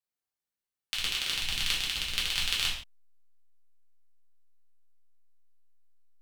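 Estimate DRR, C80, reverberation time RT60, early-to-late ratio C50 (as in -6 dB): -5.5 dB, 8.5 dB, not exponential, 4.5 dB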